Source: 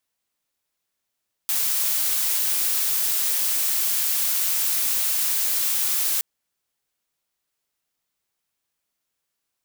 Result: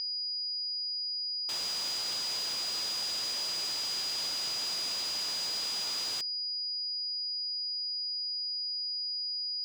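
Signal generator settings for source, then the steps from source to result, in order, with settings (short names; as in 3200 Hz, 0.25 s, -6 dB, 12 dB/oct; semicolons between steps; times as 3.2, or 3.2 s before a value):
noise blue, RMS -22.5 dBFS 4.72 s
bell 1900 Hz -8 dB 1.4 oct; whine 4900 Hz -26 dBFS; air absorption 140 m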